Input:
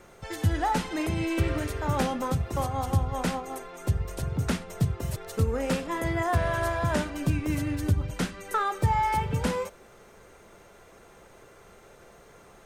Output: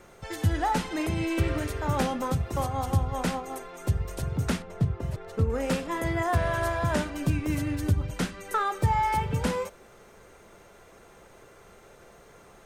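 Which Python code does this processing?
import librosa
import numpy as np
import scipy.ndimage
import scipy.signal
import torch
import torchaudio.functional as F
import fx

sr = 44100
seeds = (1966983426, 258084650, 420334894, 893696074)

y = fx.lowpass(x, sr, hz=1700.0, slope=6, at=(4.62, 5.5))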